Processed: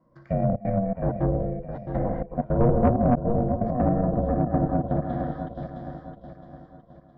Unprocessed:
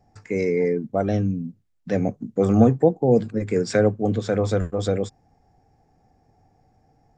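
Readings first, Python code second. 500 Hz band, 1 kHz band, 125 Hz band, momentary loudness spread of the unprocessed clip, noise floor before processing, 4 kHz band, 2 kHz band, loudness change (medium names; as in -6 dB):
-5.0 dB, +3.5 dB, 0.0 dB, 10 LU, -63 dBFS, under -20 dB, -11.0 dB, -3.0 dB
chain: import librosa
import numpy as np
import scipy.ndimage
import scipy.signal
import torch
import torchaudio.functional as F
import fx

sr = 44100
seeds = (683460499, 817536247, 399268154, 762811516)

p1 = fx.low_shelf(x, sr, hz=78.0, db=-5.5)
p2 = fx.level_steps(p1, sr, step_db=14)
p3 = p1 + F.gain(torch.from_numpy(p2), 0.0).numpy()
p4 = fx.rev_gated(p3, sr, seeds[0], gate_ms=300, shape='flat', drr_db=0.5)
p5 = fx.step_gate(p4, sr, bpm=162, pattern='xxxxxx.xxx.x.x', floor_db=-24.0, edge_ms=4.5)
p6 = fx.fixed_phaser(p5, sr, hz=630.0, stages=6)
p7 = p6 + fx.echo_feedback(p6, sr, ms=664, feedback_pct=41, wet_db=-10.0, dry=0)
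p8 = p7 * np.sin(2.0 * np.pi * 240.0 * np.arange(len(p7)) / sr)
p9 = fx.env_lowpass_down(p8, sr, base_hz=800.0, full_db=-19.5)
p10 = 10.0 ** (-12.0 / 20.0) * np.tanh(p9 / 10.0 ** (-12.0 / 20.0))
p11 = scipy.signal.sosfilt(scipy.signal.butter(4, 3200.0, 'lowpass', fs=sr, output='sos'), p10)
y = fx.peak_eq(p11, sr, hz=150.0, db=4.5, octaves=1.2)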